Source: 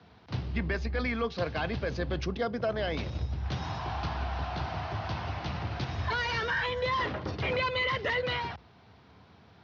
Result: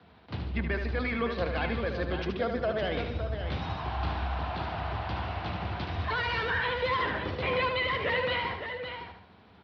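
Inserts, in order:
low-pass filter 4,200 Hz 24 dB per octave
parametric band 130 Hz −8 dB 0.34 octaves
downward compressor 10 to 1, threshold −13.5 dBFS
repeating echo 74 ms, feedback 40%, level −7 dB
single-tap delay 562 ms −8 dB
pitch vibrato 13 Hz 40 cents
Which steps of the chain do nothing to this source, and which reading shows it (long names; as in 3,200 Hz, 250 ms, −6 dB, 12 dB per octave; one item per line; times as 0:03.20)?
downward compressor, threshold −13.5 dBFS: peak of its input −18.5 dBFS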